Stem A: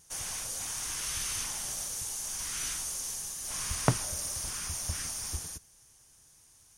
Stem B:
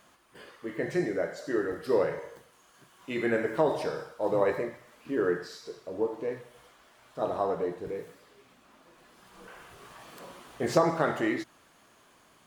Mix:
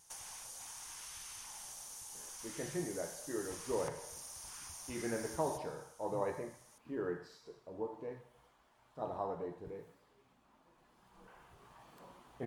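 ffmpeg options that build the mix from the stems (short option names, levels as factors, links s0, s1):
-filter_complex "[0:a]lowshelf=f=390:g=-6,acompressor=threshold=0.00708:ratio=6,volume=0.631[s0];[1:a]lowshelf=f=220:g=11,adelay=1800,volume=0.188[s1];[s0][s1]amix=inputs=2:normalize=0,equalizer=f=880:t=o:w=0.57:g=8.5"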